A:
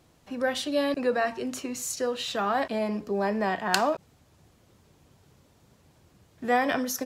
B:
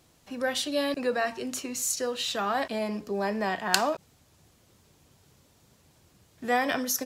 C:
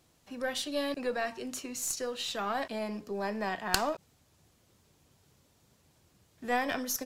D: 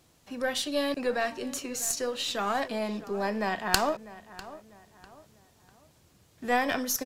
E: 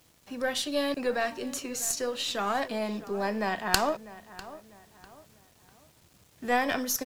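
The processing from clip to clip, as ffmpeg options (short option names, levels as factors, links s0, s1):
-af "highshelf=f=2800:g=7.5,volume=0.75"
-af "aeval=exprs='(tanh(2.82*val(0)+0.8)-tanh(0.8))/2.82':c=same"
-filter_complex "[0:a]asplit=2[s0][s1];[s1]adelay=648,lowpass=f=2900:p=1,volume=0.15,asplit=2[s2][s3];[s3]adelay=648,lowpass=f=2900:p=1,volume=0.38,asplit=2[s4][s5];[s5]adelay=648,lowpass=f=2900:p=1,volume=0.38[s6];[s0][s2][s4][s6]amix=inputs=4:normalize=0,volume=1.58"
-af "acrusher=bits=9:mix=0:aa=0.000001"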